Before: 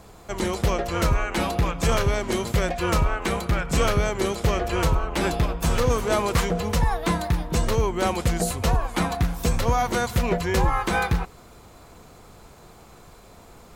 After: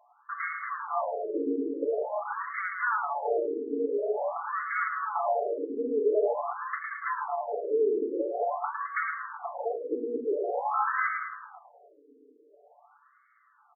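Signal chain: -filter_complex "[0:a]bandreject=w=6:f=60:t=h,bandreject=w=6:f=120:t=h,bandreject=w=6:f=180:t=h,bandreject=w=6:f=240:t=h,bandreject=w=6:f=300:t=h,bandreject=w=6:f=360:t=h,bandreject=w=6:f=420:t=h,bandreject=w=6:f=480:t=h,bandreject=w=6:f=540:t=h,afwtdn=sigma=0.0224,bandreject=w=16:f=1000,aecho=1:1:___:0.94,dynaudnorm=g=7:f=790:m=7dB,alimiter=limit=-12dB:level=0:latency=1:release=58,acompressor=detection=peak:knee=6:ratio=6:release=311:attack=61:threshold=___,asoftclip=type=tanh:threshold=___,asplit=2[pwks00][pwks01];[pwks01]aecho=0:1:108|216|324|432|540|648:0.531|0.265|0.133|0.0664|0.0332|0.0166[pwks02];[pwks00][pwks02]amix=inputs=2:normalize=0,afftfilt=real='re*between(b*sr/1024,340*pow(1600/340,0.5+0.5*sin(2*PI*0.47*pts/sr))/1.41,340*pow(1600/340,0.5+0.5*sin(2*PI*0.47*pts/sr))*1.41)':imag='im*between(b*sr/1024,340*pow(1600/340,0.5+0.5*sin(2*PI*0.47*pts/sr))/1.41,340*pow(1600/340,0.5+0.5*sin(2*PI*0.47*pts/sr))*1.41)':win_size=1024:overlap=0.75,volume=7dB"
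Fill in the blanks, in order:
6.9, -29dB, -20.5dB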